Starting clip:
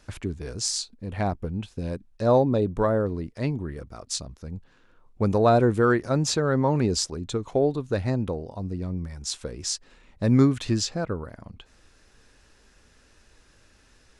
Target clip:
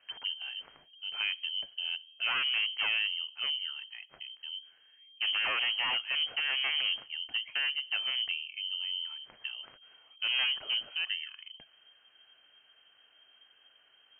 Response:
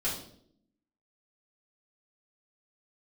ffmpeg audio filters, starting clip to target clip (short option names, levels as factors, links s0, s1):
-filter_complex "[0:a]aeval=exprs='0.106*(abs(mod(val(0)/0.106+3,4)-2)-1)':c=same,asplit=2[s0][s1];[1:a]atrim=start_sample=2205[s2];[s1][s2]afir=irnorm=-1:irlink=0,volume=0.0447[s3];[s0][s3]amix=inputs=2:normalize=0,lowpass=f=2700:t=q:w=0.5098,lowpass=f=2700:t=q:w=0.6013,lowpass=f=2700:t=q:w=0.9,lowpass=f=2700:t=q:w=2.563,afreqshift=-3200,volume=0.501"